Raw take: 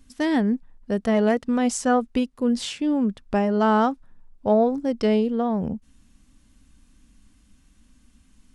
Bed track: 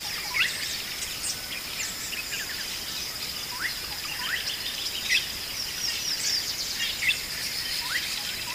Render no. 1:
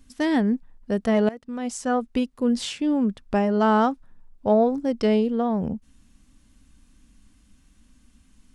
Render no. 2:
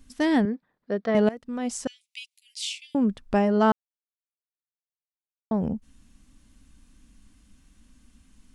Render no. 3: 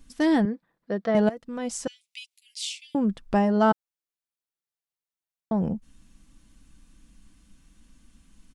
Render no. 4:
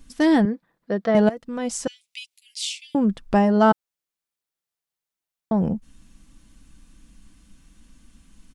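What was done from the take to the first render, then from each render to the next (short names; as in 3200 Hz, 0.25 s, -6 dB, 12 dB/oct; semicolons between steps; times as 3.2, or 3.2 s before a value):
1.29–2.3 fade in, from -19.5 dB
0.45–1.15 speaker cabinet 240–4400 Hz, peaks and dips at 250 Hz -6 dB, 880 Hz -6 dB, 2800 Hz -9 dB; 1.87–2.95 steep high-pass 2200 Hz 72 dB/oct; 3.72–5.51 mute
dynamic EQ 2400 Hz, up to -4 dB, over -44 dBFS, Q 1.8; comb 6 ms, depth 32%
gain +4 dB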